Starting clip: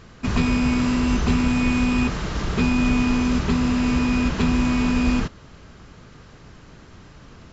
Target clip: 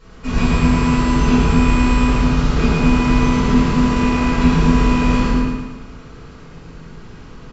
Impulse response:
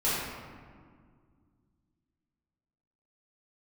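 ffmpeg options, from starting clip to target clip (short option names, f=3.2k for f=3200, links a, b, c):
-filter_complex "[0:a]aecho=1:1:111|222|333|444|555|666|777:0.596|0.304|0.155|0.079|0.0403|0.0206|0.0105[a];[1:a]atrim=start_sample=2205,afade=t=out:st=0.38:d=0.01,atrim=end_sample=17199[b];[a][b]afir=irnorm=-1:irlink=0,volume=-7dB"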